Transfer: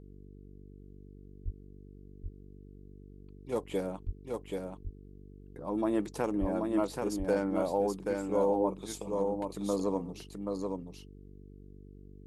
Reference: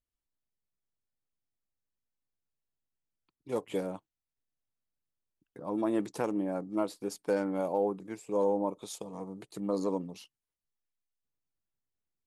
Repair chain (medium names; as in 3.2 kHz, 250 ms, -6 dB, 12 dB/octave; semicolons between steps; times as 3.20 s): de-hum 48.7 Hz, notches 9; de-plosive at 1.44/4.05/6.40 s; inverse comb 780 ms -4 dB